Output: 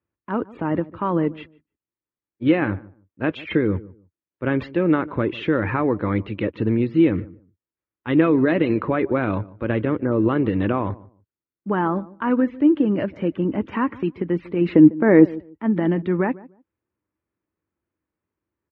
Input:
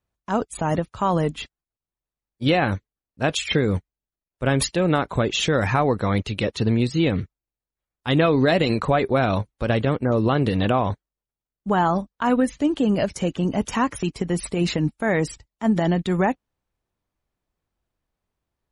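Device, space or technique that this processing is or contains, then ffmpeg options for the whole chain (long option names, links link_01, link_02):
bass cabinet: -filter_complex "[0:a]highpass=frequency=75:width=0.5412,highpass=frequency=75:width=1.3066,equalizer=frequency=140:width_type=q:width=4:gain=-5,equalizer=frequency=320:width_type=q:width=4:gain=9,equalizer=frequency=720:width_type=q:width=4:gain=-9,lowpass=frequency=2400:width=0.5412,lowpass=frequency=2400:width=1.3066,asettb=1/sr,asplit=3[link_01][link_02][link_03];[link_01]atrim=end=14.754[link_04];[link_02]atrim=start=14.75:end=15.26,asetpts=PTS-STARTPTS,afade=type=in:duration=0.004:curve=qsin,afade=type=out:start_time=0.506:duration=0.004:curve=qsin,equalizer=frequency=380:width=0.46:gain=9.5[link_05];[link_03]atrim=start=15.256[link_06];[link_04][link_05]acrossfade=duration=0.004:curve1=hsin:curve2=qsin[link_07];[link_07][link_06]acrossfade=duration=0.004:curve1=qsin:curve2=hsin,asplit=2[link_08][link_09];[link_09]adelay=149,lowpass=frequency=900:poles=1,volume=-19dB,asplit=2[link_10][link_11];[link_11]adelay=149,lowpass=frequency=900:poles=1,volume=0.21[link_12];[link_08][link_10][link_12]amix=inputs=3:normalize=0,volume=-1dB"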